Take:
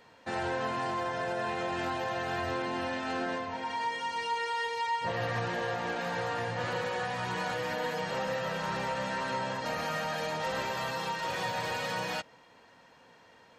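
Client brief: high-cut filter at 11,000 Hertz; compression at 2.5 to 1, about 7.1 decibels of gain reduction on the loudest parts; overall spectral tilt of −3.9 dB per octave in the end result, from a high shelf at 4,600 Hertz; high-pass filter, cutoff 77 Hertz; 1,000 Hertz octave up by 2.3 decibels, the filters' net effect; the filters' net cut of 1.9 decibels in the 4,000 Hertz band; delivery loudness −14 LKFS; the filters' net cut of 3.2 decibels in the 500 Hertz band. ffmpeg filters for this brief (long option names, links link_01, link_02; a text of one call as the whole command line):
ffmpeg -i in.wav -af "highpass=77,lowpass=11000,equalizer=frequency=500:width_type=o:gain=-5,equalizer=frequency=1000:width_type=o:gain=4,equalizer=frequency=4000:width_type=o:gain=-5.5,highshelf=frequency=4600:gain=5.5,acompressor=threshold=-37dB:ratio=2.5,volume=23.5dB" out.wav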